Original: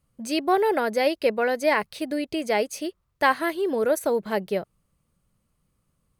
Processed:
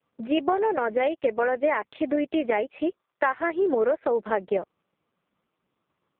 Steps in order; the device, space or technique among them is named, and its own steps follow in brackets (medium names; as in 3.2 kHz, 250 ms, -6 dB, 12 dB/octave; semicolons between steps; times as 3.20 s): 2.76–3.91 s: high-pass 170 Hz 24 dB/octave; voicemail (band-pass 320–2600 Hz; compression 10:1, threshold -27 dBFS, peak gain reduction 13 dB; trim +8 dB; AMR-NB 4.75 kbps 8 kHz)